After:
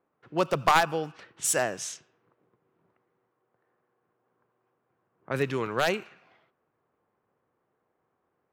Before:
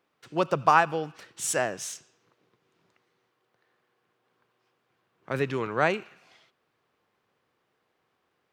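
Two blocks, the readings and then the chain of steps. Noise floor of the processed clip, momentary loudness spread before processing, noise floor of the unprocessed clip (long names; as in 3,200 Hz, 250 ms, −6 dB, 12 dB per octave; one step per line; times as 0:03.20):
−78 dBFS, 15 LU, −76 dBFS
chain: wavefolder on the positive side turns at −14 dBFS
high-shelf EQ 11,000 Hz +11.5 dB
low-pass that shuts in the quiet parts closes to 1,200 Hz, open at −25.5 dBFS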